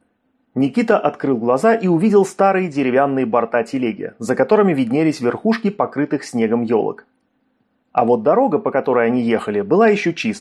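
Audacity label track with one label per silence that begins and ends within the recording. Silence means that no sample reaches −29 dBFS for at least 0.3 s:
6.990000	7.950000	silence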